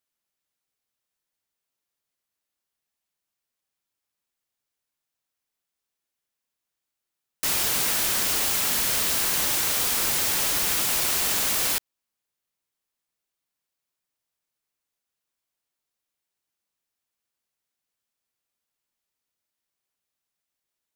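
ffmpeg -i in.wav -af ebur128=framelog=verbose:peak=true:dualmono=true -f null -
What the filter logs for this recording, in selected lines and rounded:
Integrated loudness:
  I:         -18.2 LUFS
  Threshold: -28.2 LUFS
Loudness range:
  LRA:         9.1 LU
  Threshold: -40.1 LUFS
  LRA low:   -27.0 LUFS
  LRA high:  -17.9 LUFS
True peak:
  Peak:      -11.1 dBFS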